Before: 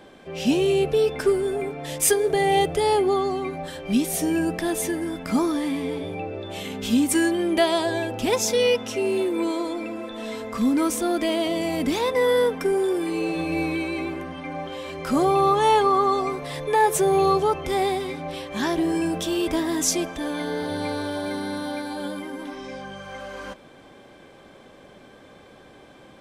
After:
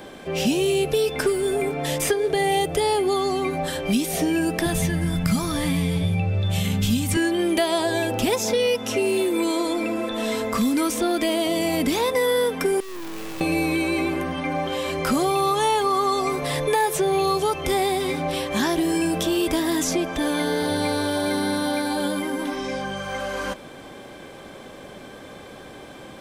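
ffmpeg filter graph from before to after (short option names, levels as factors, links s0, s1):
-filter_complex "[0:a]asettb=1/sr,asplit=3[s0][s1][s2];[s0]atrim=end=4.664[s3];[s1]atrim=start=4.66:end=7.17,asetpts=PTS-STARTPTS,afade=t=in:d=0.004:c=qsin,afade=t=out:st=2.506:d=0.004:c=qsin,lowshelf=f=210:t=q:w=3:g=13.5,bandreject=f=930:w=15[s4];[s2]atrim=start=7.166[s5];[s3][s4]acrossfade=d=0.004:c1=hsin:c2=qsin[s6];[s6][s5]acrossfade=d=0.004:c1=qsin:c2=hsin,asettb=1/sr,asplit=3[s7][s8][s9];[s7]atrim=end=12.804[s10];[s8]atrim=start=12.8:end=13.41,asetpts=PTS-STARTPTS,afade=t=in:d=0.004:c=qsin,afade=t=out:st=0.606:d=0.004:c=qsin,lowpass=3400,volume=59.6,asoftclip=hard,volume=0.0168,acrusher=bits=5:dc=4:mix=0:aa=0.000001[s11];[s9]atrim=start=13.406[s12];[s10][s11]acrossfade=d=0.004:c1=hsin:c2=qsin[s13];[s13][s12]acrossfade=d=0.004:c1=qsin:c2=hsin,highshelf=f=8900:g=9,acrossover=split=2200|4800[s14][s15][s16];[s14]acompressor=threshold=0.0398:ratio=4[s17];[s15]acompressor=threshold=0.00891:ratio=4[s18];[s16]acompressor=threshold=0.00794:ratio=4[s19];[s17][s18][s19]amix=inputs=3:normalize=0,volume=2.37"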